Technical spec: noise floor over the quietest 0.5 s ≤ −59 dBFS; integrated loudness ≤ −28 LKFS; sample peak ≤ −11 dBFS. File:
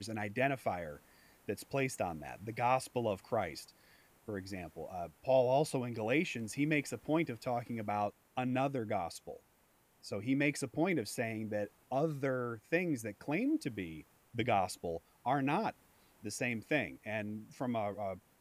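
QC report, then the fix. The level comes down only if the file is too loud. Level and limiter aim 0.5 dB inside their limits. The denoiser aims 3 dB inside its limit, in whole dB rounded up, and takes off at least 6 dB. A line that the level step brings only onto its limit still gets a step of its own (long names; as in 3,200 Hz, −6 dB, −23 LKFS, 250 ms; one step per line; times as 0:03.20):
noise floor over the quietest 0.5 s −70 dBFS: in spec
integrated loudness −36.5 LKFS: in spec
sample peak −17.5 dBFS: in spec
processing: no processing needed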